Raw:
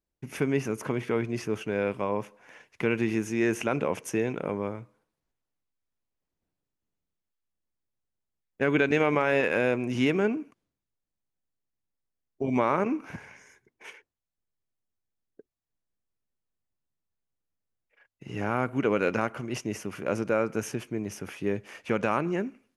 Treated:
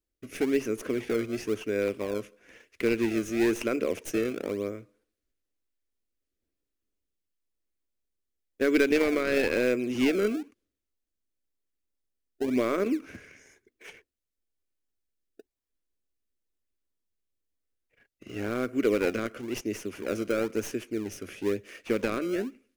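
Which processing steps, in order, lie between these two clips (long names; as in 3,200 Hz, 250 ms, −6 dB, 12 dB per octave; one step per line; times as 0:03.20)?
stylus tracing distortion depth 0.057 ms
phaser with its sweep stopped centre 360 Hz, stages 4
in parallel at −9.5 dB: sample-and-hold swept by an LFO 28×, swing 160% 1 Hz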